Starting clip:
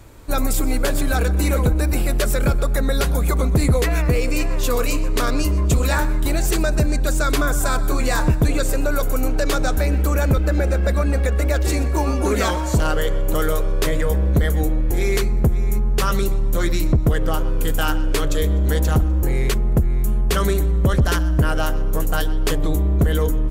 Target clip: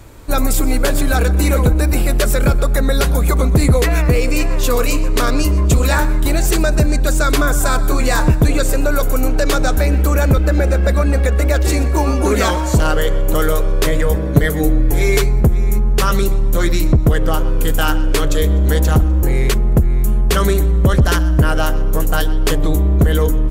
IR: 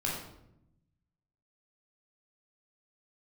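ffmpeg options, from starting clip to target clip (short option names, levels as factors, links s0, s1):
-filter_complex "[0:a]asettb=1/sr,asplit=3[s0][s1][s2];[s0]atrim=end=14.154[s3];[s1]atrim=start=14.15:end=15.41,asetpts=PTS-STARTPTS,afade=t=in:d=0.004:c=qsin,afade=t=out:st=1.256:d=0.004:c=qsin,aecho=1:1:6.9:0.71,atrim=end_sample=55566[s4];[s2]atrim=start=15.406[s5];[s3][s4]acrossfade=d=0.004:c1=hsin:c2=qsin[s6];[s6][s5]acrossfade=d=0.004:c1=qsin:c2=hsin,volume=1.68"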